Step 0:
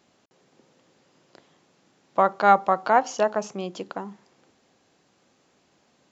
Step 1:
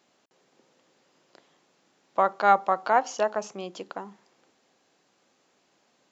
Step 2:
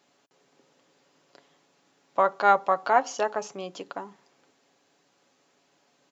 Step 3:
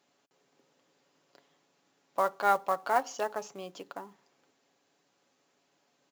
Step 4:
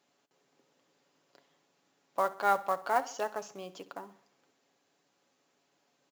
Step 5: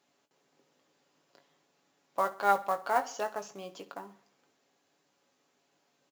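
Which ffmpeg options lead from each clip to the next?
-af "highpass=f=320:p=1,volume=-2dB"
-af "aecho=1:1:7.1:0.39"
-af "acrusher=bits=5:mode=log:mix=0:aa=0.000001,volume=-6dB"
-af "aecho=1:1:65|130|195|260:0.133|0.0653|0.032|0.0157,volume=-1.5dB"
-filter_complex "[0:a]asplit=2[a][b];[b]adelay=20,volume=-9dB[c];[a][c]amix=inputs=2:normalize=0"

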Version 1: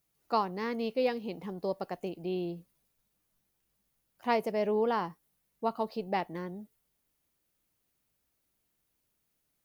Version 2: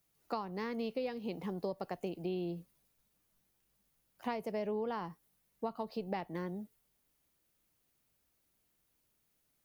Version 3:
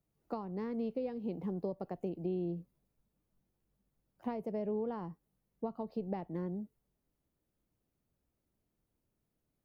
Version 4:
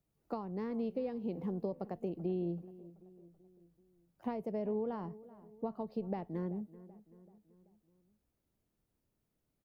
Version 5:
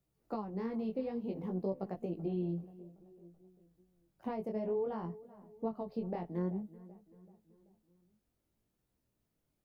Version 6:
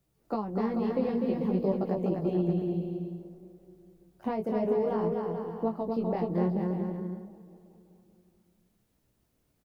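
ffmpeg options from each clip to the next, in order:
-filter_complex "[0:a]acrossover=split=140[a][b];[b]acompressor=threshold=-35dB:ratio=10[c];[a][c]amix=inputs=2:normalize=0,volume=1dB"
-af "tiltshelf=f=970:g=9,volume=-5.5dB"
-filter_complex "[0:a]asplit=2[a][b];[b]adelay=383,lowpass=f=1.8k:p=1,volume=-18dB,asplit=2[c][d];[d]adelay=383,lowpass=f=1.8k:p=1,volume=0.53,asplit=2[e][f];[f]adelay=383,lowpass=f=1.8k:p=1,volume=0.53,asplit=2[g][h];[h]adelay=383,lowpass=f=1.8k:p=1,volume=0.53[i];[a][c][e][g][i]amix=inputs=5:normalize=0"
-af "flanger=delay=15.5:depth=7.6:speed=0.56,volume=3.5dB"
-af "aecho=1:1:250|437.5|578.1|683.6|762.7:0.631|0.398|0.251|0.158|0.1,volume=7dB"

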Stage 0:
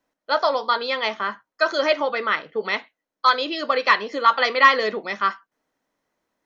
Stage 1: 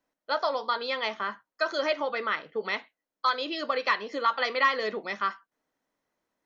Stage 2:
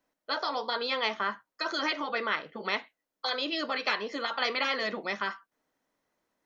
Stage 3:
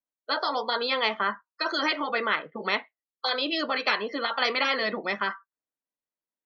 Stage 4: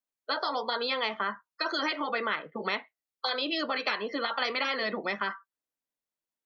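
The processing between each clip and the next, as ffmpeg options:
-af "acompressor=threshold=-22dB:ratio=1.5,volume=-5dB"
-af "afftfilt=real='re*lt(hypot(re,im),0.251)':imag='im*lt(hypot(re,im),0.251)':win_size=1024:overlap=0.75,volume=2dB"
-af "afftdn=nr=26:nf=-45,volume=4dB"
-filter_complex "[0:a]acrossover=split=150[a][b];[b]acompressor=threshold=-28dB:ratio=2.5[c];[a][c]amix=inputs=2:normalize=0"

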